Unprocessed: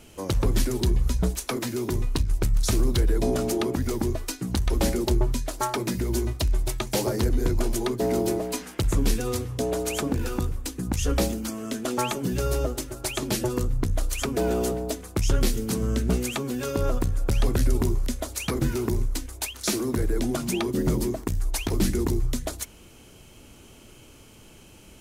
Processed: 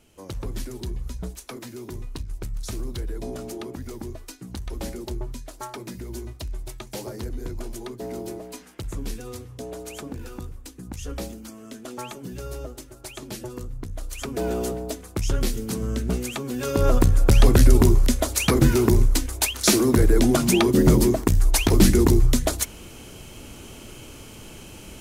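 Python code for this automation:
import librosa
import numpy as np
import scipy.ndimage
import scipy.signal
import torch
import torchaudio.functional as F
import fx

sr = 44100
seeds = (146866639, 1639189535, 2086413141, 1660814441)

y = fx.gain(x, sr, db=fx.line((13.92, -9.0), (14.44, -1.5), (16.43, -1.5), (17.0, 8.0)))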